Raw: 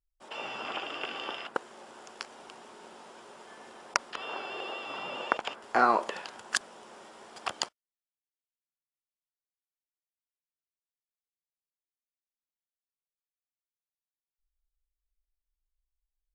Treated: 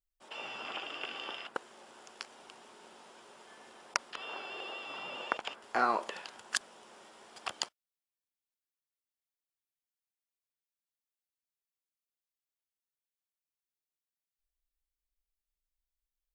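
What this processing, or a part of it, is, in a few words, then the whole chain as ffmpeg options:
presence and air boost: -af "equalizer=frequency=3100:width_type=o:width=1.8:gain=3.5,highshelf=frequency=9100:gain=7,volume=-6.5dB"

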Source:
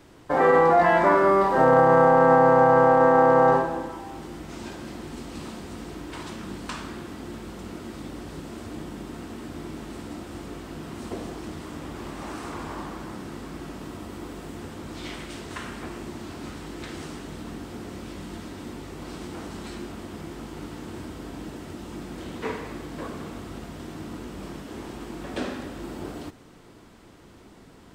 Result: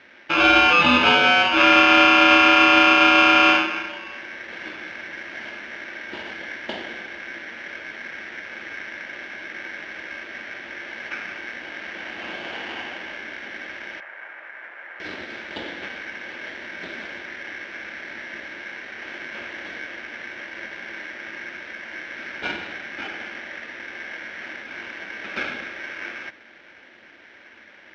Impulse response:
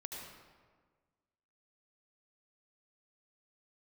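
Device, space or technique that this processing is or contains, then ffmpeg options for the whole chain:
ring modulator pedal into a guitar cabinet: -filter_complex "[0:a]aeval=exprs='val(0)*sgn(sin(2*PI*1900*n/s))':channel_layout=same,highpass=84,equalizer=frequency=130:width_type=q:width=4:gain=-9,equalizer=frequency=230:width_type=q:width=4:gain=9,equalizer=frequency=340:width_type=q:width=4:gain=10,equalizer=frequency=570:width_type=q:width=4:gain=6,equalizer=frequency=1100:width_type=q:width=4:gain=-5,equalizer=frequency=2100:width_type=q:width=4:gain=-3,lowpass=frequency=3600:width=0.5412,lowpass=frequency=3600:width=1.3066,asettb=1/sr,asplit=3[link_01][link_02][link_03];[link_01]atrim=end=14.004[link_04];[link_02]atrim=start=14:end=15,asetpts=PTS-STARTPTS,afade=type=in:duration=0.004:curve=qsin,afade=type=out:start_time=0.996:duration=0.004:curve=qsin,acrossover=split=540 2100:gain=0.0708 1 0.0631[link_05][link_06][link_07];[link_05][link_06][link_07]amix=inputs=3:normalize=0[link_08];[link_03]atrim=start=14.996[link_09];[link_04][link_08]acrossfade=duration=0.004:curve1=hsin:curve2=qsin[link_10];[link_10][link_09]acrossfade=duration=0.004:curve1=qsin:curve2=hsin,volume=4dB"

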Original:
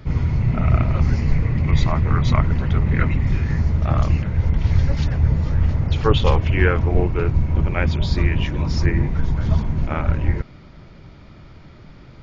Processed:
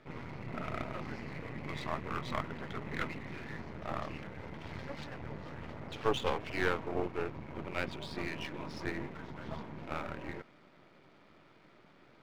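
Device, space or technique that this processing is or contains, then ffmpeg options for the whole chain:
crystal radio: -af "highpass=300,lowpass=3500,aeval=exprs='if(lt(val(0),0),0.251*val(0),val(0))':channel_layout=same,volume=-7dB"

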